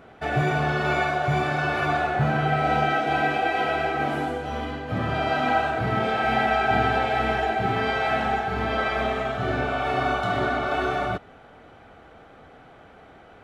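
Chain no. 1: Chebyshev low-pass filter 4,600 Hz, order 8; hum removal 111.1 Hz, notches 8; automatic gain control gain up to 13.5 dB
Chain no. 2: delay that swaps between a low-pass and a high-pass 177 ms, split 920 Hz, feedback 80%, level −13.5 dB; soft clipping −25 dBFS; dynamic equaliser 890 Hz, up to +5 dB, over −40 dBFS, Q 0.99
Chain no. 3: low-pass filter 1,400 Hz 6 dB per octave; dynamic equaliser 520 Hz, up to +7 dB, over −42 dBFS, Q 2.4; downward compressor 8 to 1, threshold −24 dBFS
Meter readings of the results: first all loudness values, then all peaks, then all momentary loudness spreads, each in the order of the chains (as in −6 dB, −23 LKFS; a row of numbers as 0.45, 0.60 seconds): −14.5, −26.0, −28.5 LKFS; −1.5, −19.0, −16.0 dBFS; 5, 5, 1 LU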